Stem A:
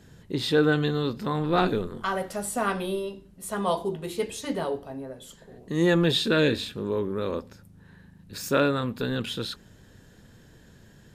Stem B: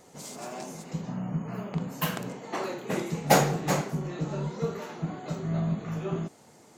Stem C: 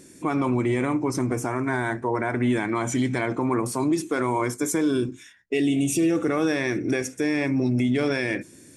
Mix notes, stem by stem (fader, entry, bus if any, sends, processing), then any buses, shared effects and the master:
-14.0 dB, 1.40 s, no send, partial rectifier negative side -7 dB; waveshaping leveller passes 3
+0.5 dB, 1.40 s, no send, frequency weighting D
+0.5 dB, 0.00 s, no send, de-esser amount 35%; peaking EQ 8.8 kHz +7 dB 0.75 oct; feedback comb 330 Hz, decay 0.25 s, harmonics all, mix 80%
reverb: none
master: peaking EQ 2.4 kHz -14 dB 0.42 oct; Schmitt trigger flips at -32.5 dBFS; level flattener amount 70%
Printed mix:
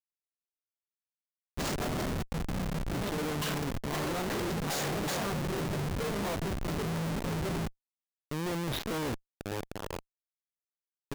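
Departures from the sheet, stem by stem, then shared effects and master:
stem A: entry 1.40 s -> 2.60 s; stem C: muted; master: missing level flattener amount 70%

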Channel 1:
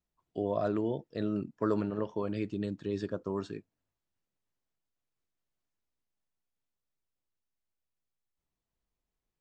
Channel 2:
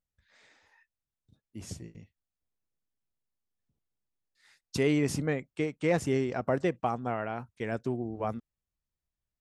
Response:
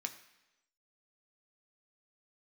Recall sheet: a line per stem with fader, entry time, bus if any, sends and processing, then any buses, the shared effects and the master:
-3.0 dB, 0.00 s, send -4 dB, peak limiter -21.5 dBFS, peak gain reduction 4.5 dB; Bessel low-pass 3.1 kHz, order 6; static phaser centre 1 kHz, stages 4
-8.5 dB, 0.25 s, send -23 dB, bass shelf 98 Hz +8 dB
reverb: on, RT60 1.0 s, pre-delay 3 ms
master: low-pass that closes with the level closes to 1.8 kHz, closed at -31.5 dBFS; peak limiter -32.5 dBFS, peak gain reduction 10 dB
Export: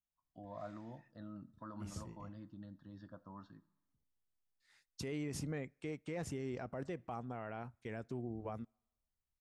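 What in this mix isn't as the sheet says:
stem 1 -3.0 dB -> -13.0 dB; master: missing low-pass that closes with the level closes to 1.8 kHz, closed at -31.5 dBFS

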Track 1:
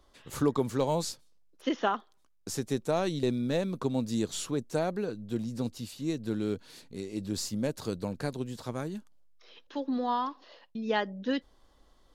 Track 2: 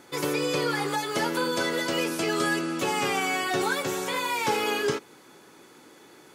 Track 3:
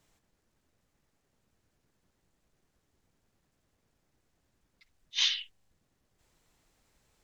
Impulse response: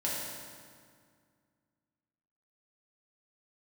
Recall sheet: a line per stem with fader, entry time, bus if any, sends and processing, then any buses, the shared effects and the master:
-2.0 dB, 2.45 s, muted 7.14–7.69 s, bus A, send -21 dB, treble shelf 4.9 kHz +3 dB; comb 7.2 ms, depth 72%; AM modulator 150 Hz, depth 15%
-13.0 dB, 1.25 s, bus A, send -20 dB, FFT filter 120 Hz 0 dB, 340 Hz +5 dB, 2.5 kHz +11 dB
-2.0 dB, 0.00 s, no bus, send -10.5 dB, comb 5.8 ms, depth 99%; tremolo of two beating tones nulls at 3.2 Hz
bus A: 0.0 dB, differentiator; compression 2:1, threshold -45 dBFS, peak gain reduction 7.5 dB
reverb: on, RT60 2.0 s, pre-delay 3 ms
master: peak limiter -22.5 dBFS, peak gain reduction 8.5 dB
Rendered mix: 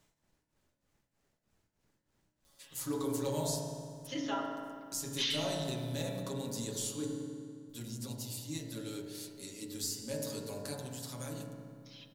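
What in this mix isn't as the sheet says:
stem 1 -2.0 dB -> +5.5 dB; stem 2: muted; stem 3: missing comb 5.8 ms, depth 99%

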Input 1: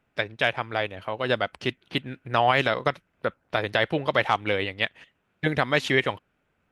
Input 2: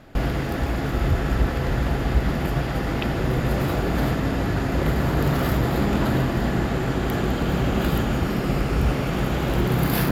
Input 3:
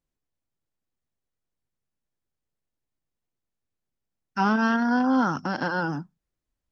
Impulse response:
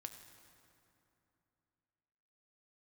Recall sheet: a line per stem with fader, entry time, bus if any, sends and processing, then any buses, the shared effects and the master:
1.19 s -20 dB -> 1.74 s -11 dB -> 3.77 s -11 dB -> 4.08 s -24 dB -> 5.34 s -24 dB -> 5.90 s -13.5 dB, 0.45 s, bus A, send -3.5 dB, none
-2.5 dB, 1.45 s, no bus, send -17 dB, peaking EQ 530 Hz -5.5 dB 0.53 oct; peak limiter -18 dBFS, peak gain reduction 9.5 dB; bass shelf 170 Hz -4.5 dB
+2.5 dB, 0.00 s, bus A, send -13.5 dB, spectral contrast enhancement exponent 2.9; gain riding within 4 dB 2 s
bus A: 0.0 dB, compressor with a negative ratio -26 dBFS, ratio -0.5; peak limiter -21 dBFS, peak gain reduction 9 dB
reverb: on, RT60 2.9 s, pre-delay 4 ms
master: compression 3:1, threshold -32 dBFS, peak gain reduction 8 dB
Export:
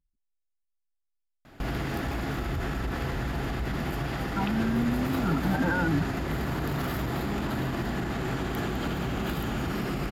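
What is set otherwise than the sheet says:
stem 1: muted; master: missing compression 3:1, threshold -32 dBFS, peak gain reduction 8 dB

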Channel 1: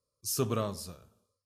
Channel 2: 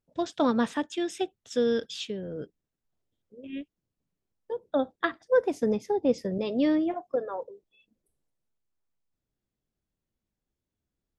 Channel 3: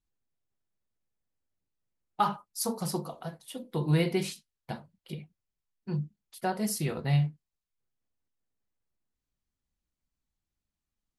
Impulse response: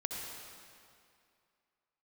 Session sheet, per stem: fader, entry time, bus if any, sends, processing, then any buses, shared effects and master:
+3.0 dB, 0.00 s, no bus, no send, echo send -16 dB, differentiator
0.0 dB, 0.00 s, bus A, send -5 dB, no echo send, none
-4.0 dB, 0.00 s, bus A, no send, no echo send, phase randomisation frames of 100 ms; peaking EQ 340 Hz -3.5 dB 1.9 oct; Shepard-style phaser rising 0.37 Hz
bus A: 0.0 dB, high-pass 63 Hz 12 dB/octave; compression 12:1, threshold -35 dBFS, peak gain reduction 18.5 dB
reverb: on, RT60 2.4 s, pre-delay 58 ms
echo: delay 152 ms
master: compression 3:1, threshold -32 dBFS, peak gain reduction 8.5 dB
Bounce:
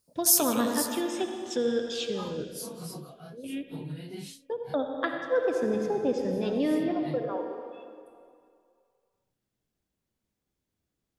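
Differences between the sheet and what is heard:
stem 1 +3.0 dB -> +12.0 dB; master: missing compression 3:1, threshold -32 dBFS, peak gain reduction 8.5 dB

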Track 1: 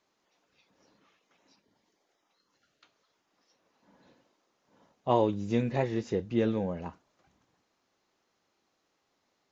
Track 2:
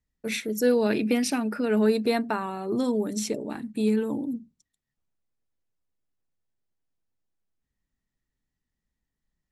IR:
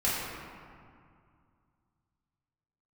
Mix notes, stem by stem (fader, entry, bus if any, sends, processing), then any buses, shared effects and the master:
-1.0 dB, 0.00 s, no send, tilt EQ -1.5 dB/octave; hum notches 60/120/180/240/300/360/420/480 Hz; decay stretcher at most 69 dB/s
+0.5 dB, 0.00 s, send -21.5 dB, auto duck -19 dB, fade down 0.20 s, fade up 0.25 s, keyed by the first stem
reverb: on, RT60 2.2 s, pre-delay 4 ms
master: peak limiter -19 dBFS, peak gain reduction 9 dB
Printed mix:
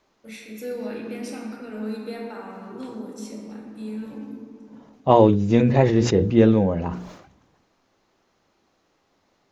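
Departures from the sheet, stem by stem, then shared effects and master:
stem 1 -1.0 dB -> +9.5 dB; master: missing peak limiter -19 dBFS, peak gain reduction 9 dB

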